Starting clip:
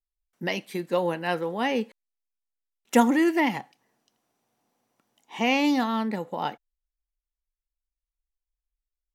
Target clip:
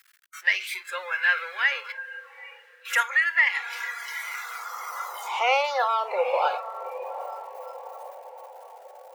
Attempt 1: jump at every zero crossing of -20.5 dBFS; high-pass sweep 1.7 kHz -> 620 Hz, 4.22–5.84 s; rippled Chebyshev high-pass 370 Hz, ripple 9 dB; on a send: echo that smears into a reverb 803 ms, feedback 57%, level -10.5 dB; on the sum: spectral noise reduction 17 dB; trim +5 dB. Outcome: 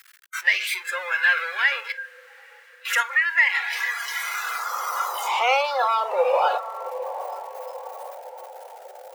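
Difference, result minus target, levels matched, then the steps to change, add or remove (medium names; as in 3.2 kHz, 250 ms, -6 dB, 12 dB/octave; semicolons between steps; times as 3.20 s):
jump at every zero crossing: distortion +6 dB
change: jump at every zero crossing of -28.5 dBFS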